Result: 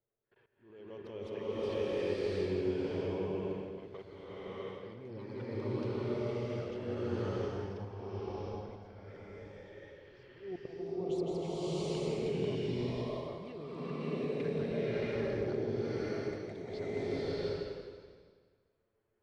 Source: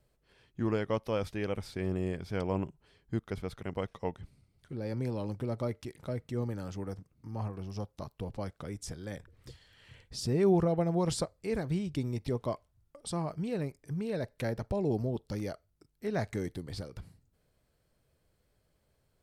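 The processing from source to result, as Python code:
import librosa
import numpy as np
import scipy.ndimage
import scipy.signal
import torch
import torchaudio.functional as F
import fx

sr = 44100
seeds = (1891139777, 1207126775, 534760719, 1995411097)

y = fx.peak_eq(x, sr, hz=400.0, db=11.5, octaves=0.42)
y = fx.env_flanger(y, sr, rest_ms=9.2, full_db=-25.5)
y = fx.env_lowpass(y, sr, base_hz=1700.0, full_db=-28.5)
y = fx.tilt_eq(y, sr, slope=2.0)
y = fx.echo_feedback(y, sr, ms=163, feedback_pct=52, wet_db=-9)
y = fx.level_steps(y, sr, step_db=23)
y = scipy.signal.sosfilt(scipy.signal.butter(2, 3600.0, 'lowpass', fs=sr, output='sos'), y)
y = fx.rider(y, sr, range_db=4, speed_s=0.5)
y = fx.auto_swell(y, sr, attack_ms=397.0)
y = fx.rev_bloom(y, sr, seeds[0], attack_ms=720, drr_db=-11.5)
y = F.gain(torch.from_numpy(y), -3.5).numpy()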